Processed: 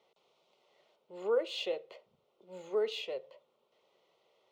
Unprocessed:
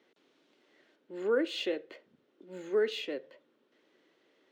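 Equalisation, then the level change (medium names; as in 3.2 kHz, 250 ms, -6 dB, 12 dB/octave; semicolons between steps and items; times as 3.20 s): bass shelf 130 Hz +9.5 dB; peaking EQ 1.4 kHz +9 dB 3 oct; static phaser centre 690 Hz, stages 4; -3.5 dB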